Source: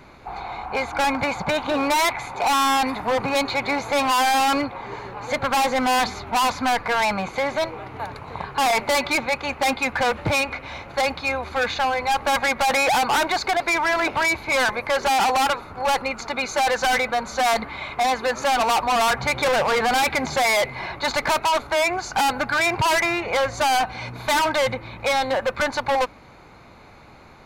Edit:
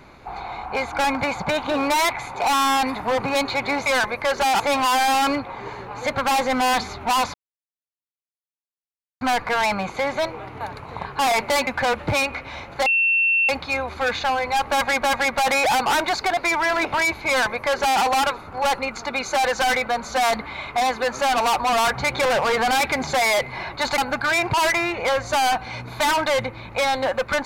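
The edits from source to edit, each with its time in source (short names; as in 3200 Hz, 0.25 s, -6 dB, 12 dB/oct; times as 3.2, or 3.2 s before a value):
6.6 insert silence 1.87 s
9.06–9.85 cut
11.04 add tone 2700 Hz -15.5 dBFS 0.63 s
12.25–12.57 loop, 2 plays
14.51–15.25 copy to 3.86
21.21–22.26 cut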